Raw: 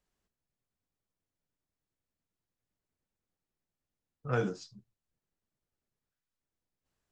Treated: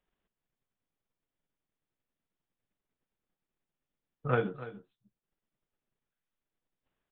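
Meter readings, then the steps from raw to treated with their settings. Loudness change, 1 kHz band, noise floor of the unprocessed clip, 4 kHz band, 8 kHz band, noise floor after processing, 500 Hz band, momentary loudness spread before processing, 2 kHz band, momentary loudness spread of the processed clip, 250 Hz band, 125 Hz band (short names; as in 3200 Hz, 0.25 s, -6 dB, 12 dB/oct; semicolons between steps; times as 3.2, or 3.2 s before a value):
+1.0 dB, +4.0 dB, under -85 dBFS, -2.5 dB, under -20 dB, under -85 dBFS, +2.0 dB, 16 LU, +2.5 dB, 14 LU, 0.0 dB, +1.0 dB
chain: bell 71 Hz -10.5 dB 1.1 oct; transient shaper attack +8 dB, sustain -6 dB; in parallel at -3.5 dB: soft clip -27 dBFS, distortion -9 dB; on the sum: echo 0.29 s -15 dB; downsampling 8000 Hz; gain -3.5 dB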